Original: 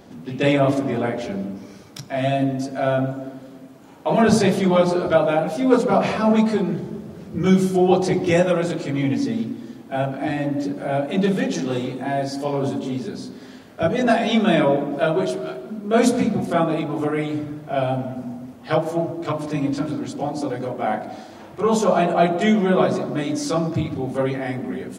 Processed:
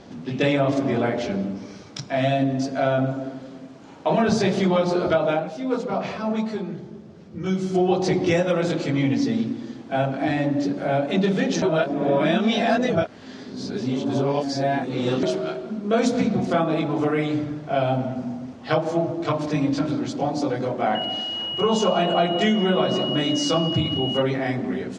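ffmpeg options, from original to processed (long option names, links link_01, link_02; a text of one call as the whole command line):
ffmpeg -i in.wav -filter_complex "[0:a]asettb=1/sr,asplit=3[link_01][link_02][link_03];[link_01]atrim=end=20.954[link_04];[link_02]atrim=start=20.95:end=24.22,asetpts=PTS-STARTPTS,afade=type=in:duration=0.004:curve=qsin,afade=type=out:start_time=3.266:duration=0.004:curve=qsin,aeval=exprs='val(0)+0.0355*sin(2*PI*2900*n/s)':channel_layout=same[link_05];[link_03]atrim=start=24.216[link_06];[link_04][link_05]acrossfade=duration=0.004:curve1=hsin:curve2=qsin[link_07];[link_07][link_06]acrossfade=duration=0.004:curve1=qsin:curve2=hsin,asplit=5[link_08][link_09][link_10][link_11][link_12];[link_08]atrim=end=5.53,asetpts=PTS-STARTPTS,afade=type=out:start_time=5.3:duration=0.23:curve=qua:silence=0.334965[link_13];[link_09]atrim=start=5.53:end=7.57,asetpts=PTS-STARTPTS,volume=-9.5dB[link_14];[link_10]atrim=start=7.57:end=11.622,asetpts=PTS-STARTPTS,afade=type=in:duration=0.23:curve=qua:silence=0.334965[link_15];[link_11]atrim=start=11.618:end=15.232,asetpts=PTS-STARTPTS,areverse[link_16];[link_12]atrim=start=15.228[link_17];[link_13][link_14][link_15]concat=n=3:v=0:a=1[link_18];[link_18][link_16]acrossfade=duration=0.004:curve1=hsin:curve2=hsin[link_19];[link_19][link_17]acrossfade=duration=0.004:curve1=hsin:curve2=hsin,lowpass=frequency=6300:width=0.5412,lowpass=frequency=6300:width=1.3066,acompressor=threshold=-18dB:ratio=5,highshelf=frequency=5000:gain=5,volume=1.5dB" out.wav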